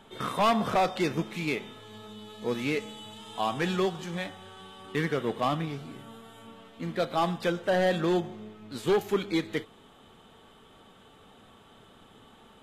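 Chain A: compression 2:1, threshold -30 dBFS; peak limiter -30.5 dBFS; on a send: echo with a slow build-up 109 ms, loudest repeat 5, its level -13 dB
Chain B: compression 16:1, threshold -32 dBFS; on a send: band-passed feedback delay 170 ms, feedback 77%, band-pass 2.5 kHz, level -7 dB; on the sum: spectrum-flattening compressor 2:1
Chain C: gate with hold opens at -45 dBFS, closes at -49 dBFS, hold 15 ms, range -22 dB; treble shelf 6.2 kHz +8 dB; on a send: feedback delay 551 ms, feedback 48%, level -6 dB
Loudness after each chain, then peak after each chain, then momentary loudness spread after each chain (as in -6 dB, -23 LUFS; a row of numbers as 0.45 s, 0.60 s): -39.0 LUFS, -40.0 LUFS, -29.0 LUFS; -25.0 dBFS, -21.5 dBFS, -14.5 dBFS; 14 LU, 8 LU, 15 LU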